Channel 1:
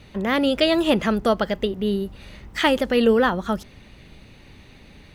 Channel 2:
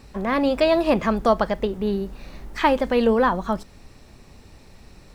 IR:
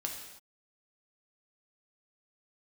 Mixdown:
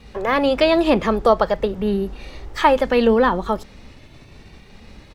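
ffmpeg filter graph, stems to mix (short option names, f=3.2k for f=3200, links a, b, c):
-filter_complex "[0:a]acompressor=threshold=-22dB:ratio=6,asplit=2[a][b];[b]adelay=2.1,afreqshift=0.85[c];[a][c]amix=inputs=2:normalize=1,volume=2.5dB[d];[1:a]lowpass=6k,agate=range=-7dB:threshold=-46dB:ratio=16:detection=peak,adelay=2.3,volume=3dB[e];[d][e]amix=inputs=2:normalize=0"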